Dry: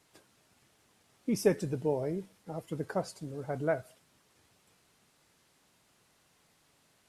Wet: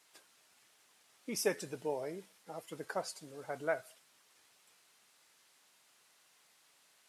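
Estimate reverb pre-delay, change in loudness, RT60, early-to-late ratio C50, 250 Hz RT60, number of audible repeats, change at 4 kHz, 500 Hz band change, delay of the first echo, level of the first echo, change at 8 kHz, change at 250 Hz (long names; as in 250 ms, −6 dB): no reverb audible, −6.0 dB, no reverb audible, no reverb audible, no reverb audible, no echo audible, +2.5 dB, −6.0 dB, no echo audible, no echo audible, +2.5 dB, −11.0 dB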